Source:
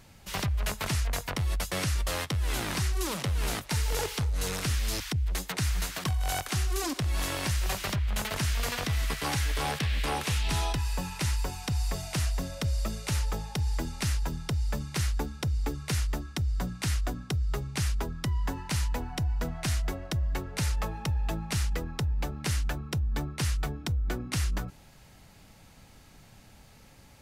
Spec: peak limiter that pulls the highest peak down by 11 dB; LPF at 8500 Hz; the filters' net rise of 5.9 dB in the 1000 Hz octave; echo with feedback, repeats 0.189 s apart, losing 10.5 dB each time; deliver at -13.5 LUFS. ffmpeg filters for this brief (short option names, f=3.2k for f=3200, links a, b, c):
-af "lowpass=8.5k,equalizer=f=1k:t=o:g=7.5,alimiter=level_in=2.5dB:limit=-24dB:level=0:latency=1,volume=-2.5dB,aecho=1:1:189|378|567:0.299|0.0896|0.0269,volume=21.5dB"